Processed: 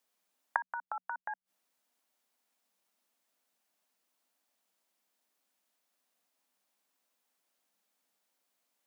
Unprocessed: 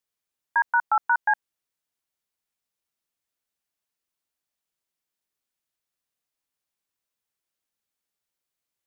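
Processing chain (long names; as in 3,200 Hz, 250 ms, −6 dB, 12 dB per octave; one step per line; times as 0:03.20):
Chebyshev high-pass with heavy ripple 180 Hz, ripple 6 dB
gate with flip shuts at −29 dBFS, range −27 dB
level +11 dB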